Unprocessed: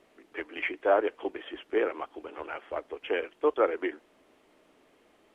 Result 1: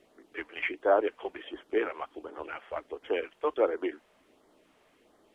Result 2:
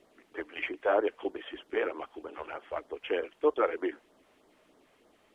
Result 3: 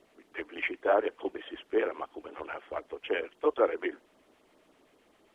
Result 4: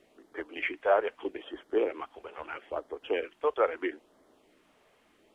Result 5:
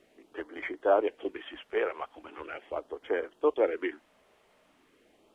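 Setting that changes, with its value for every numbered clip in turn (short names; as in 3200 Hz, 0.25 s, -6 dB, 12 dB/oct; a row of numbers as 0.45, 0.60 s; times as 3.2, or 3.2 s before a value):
LFO notch, rate: 1.4, 3.2, 7.5, 0.77, 0.4 Hz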